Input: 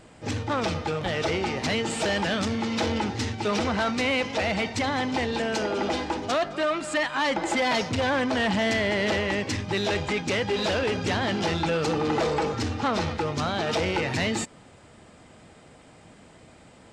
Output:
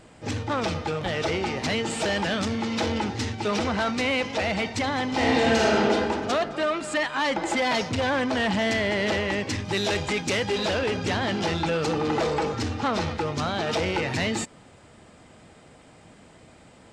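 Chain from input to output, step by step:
0:05.08–0:05.74: thrown reverb, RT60 2.4 s, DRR −6.5 dB
0:09.65–0:10.58: high-shelf EQ 5,900 Hz +9 dB

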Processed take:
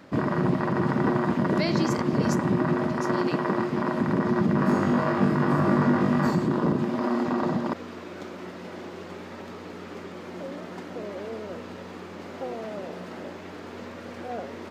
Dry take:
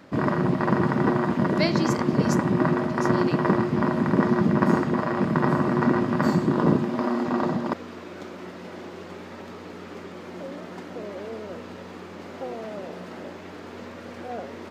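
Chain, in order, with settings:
0:03.01–0:04.01: high-pass filter 250 Hz 6 dB per octave
brickwall limiter −14 dBFS, peak gain reduction 8 dB
0:04.56–0:06.31: flutter between parallel walls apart 3.5 metres, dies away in 0.32 s

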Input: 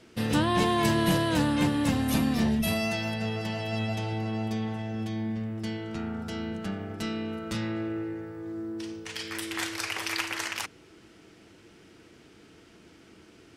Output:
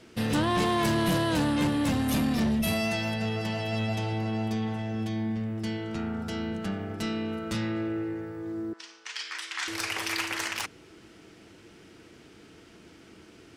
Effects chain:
soft clipping −22 dBFS, distortion −14 dB
0:08.73–0:09.68: Chebyshev band-pass filter 1,100–6,400 Hz, order 2
level +2 dB

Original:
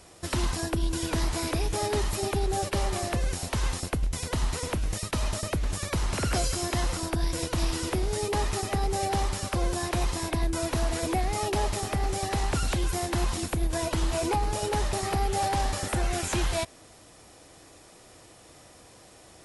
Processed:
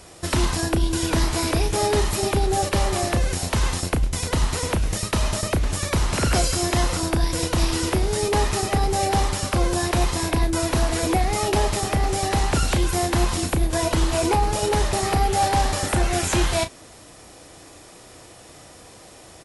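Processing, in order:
double-tracking delay 34 ms −10 dB
level +6.5 dB

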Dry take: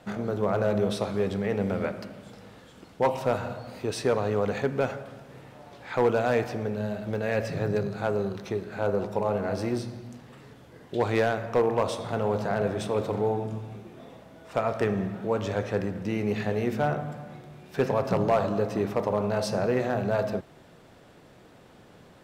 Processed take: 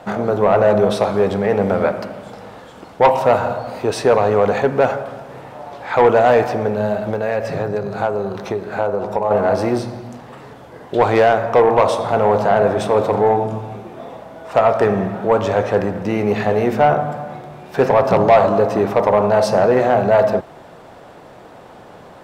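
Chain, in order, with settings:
0:07.10–0:09.31: downward compressor, threshold −29 dBFS, peak gain reduction 8 dB
parametric band 810 Hz +10.5 dB 1.8 octaves
soft clipping −11.5 dBFS, distortion −16 dB
level +7 dB

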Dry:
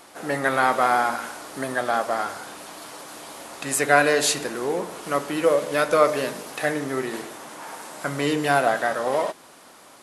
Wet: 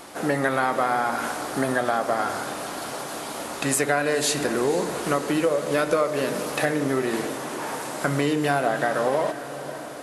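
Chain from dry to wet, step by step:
low-shelf EQ 480 Hz +5 dB
downward compressor 6 to 1, threshold −24 dBFS, peak gain reduction 13.5 dB
on a send: feedback delay with all-pass diffusion 505 ms, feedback 65%, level −13.5 dB
on the sum: level +4.5 dB

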